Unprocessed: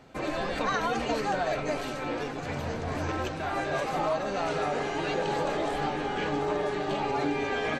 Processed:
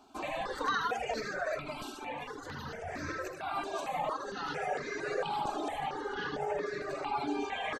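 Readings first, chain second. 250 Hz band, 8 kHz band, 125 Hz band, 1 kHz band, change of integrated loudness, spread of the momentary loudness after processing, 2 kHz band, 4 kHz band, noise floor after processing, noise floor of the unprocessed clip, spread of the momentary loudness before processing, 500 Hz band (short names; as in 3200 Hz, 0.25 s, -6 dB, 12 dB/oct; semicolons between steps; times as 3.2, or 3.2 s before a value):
-9.0 dB, -5.0 dB, -12.0 dB, -4.5 dB, -6.0 dB, 8 LU, -4.5 dB, -5.0 dB, -45 dBFS, -35 dBFS, 4 LU, -7.5 dB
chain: low shelf 230 Hz -11 dB; on a send: loudspeakers at several distances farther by 27 m -5 dB, 41 m -10 dB; on the sum: reverb removal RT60 1.7 s; step phaser 4.4 Hz 520–3000 Hz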